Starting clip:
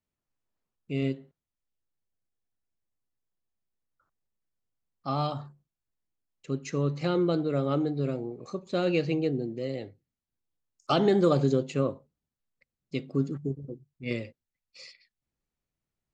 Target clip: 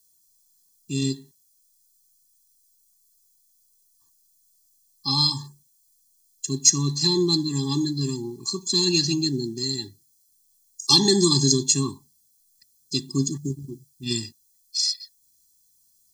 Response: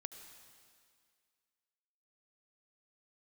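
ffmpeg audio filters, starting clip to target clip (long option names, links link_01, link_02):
-af "aexciter=amount=15.9:drive=9:freq=4000,afftfilt=real='re*eq(mod(floor(b*sr/1024/400),2),0)':imag='im*eq(mod(floor(b*sr/1024/400),2),0)':win_size=1024:overlap=0.75,volume=4dB"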